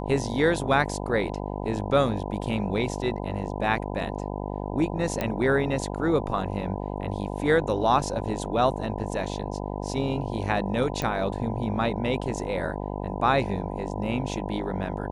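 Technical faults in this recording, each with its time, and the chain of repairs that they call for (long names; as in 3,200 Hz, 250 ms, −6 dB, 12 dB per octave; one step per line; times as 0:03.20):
mains buzz 50 Hz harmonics 20 −32 dBFS
0:05.21: click −13 dBFS
0:11.02: click −15 dBFS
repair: click removal
hum removal 50 Hz, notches 20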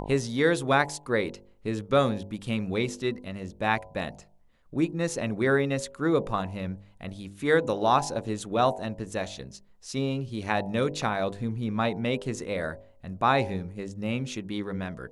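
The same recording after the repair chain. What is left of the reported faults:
none of them is left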